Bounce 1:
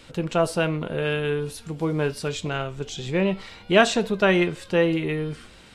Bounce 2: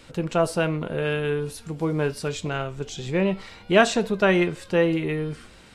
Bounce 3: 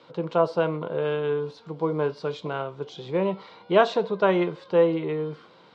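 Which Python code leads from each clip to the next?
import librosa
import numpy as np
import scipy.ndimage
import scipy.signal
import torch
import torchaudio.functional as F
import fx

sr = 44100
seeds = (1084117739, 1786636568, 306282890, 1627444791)

y1 = fx.peak_eq(x, sr, hz=3300.0, db=-3.0, octaves=0.77)
y2 = fx.cabinet(y1, sr, low_hz=150.0, low_slope=24, high_hz=4200.0, hz=(230.0, 490.0, 1000.0, 1800.0, 2600.0), db=(-9, 5, 8, -8, -8))
y2 = y2 * 10.0 ** (-2.0 / 20.0)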